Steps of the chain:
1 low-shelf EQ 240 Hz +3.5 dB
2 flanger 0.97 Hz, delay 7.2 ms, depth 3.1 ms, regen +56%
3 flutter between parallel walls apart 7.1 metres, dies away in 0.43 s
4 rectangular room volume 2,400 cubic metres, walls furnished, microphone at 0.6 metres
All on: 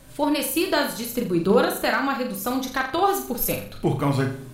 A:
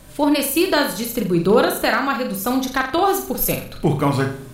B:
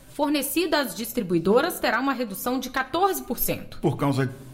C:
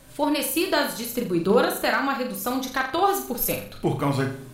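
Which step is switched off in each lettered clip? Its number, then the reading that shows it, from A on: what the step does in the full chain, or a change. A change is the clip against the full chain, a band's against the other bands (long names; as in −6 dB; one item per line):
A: 2, change in integrated loudness +4.0 LU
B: 3, echo-to-direct ratio −4.0 dB to −13.0 dB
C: 1, 125 Hz band −2.5 dB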